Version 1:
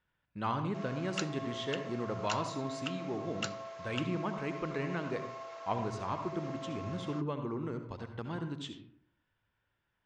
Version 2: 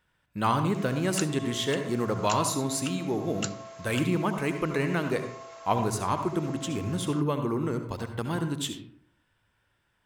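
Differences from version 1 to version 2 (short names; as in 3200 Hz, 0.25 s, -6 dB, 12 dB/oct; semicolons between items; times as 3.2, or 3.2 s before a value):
speech +8.5 dB; master: remove Bessel low-pass 4200 Hz, order 6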